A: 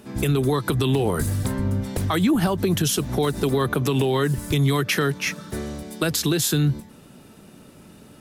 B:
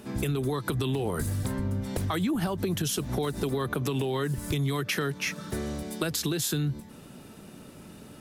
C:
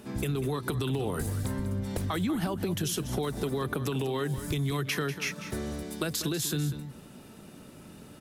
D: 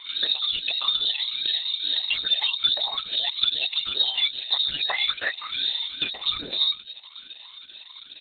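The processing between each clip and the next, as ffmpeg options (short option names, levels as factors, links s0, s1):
-af "acompressor=threshold=0.0355:ratio=2.5"
-af "aecho=1:1:194:0.251,volume=0.794"
-af "afftfilt=real='re*pow(10,23/40*sin(2*PI*(1.5*log(max(b,1)*sr/1024/100)/log(2)-(-2.4)*(pts-256)/sr)))':imag='im*pow(10,23/40*sin(2*PI*(1.5*log(max(b,1)*sr/1024/100)/log(2)-(-2.4)*(pts-256)/sr)))':win_size=1024:overlap=0.75,lowpass=f=3300:t=q:w=0.5098,lowpass=f=3300:t=q:w=0.6013,lowpass=f=3300:t=q:w=0.9,lowpass=f=3300:t=q:w=2.563,afreqshift=-3900,volume=1.5" -ar 48000 -c:a libopus -b:a 8k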